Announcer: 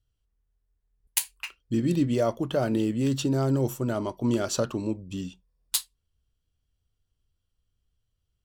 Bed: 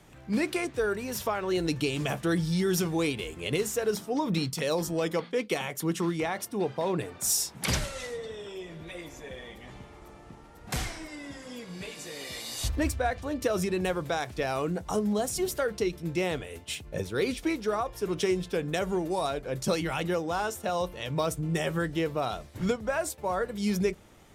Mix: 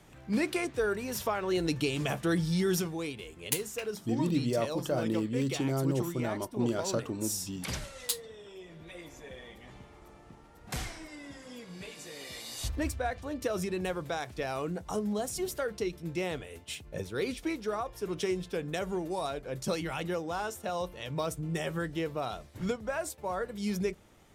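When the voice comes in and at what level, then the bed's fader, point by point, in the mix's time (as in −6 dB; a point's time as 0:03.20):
2.35 s, −5.5 dB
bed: 0:02.73 −1.5 dB
0:02.97 −8.5 dB
0:08.44 −8.5 dB
0:09.09 −4.5 dB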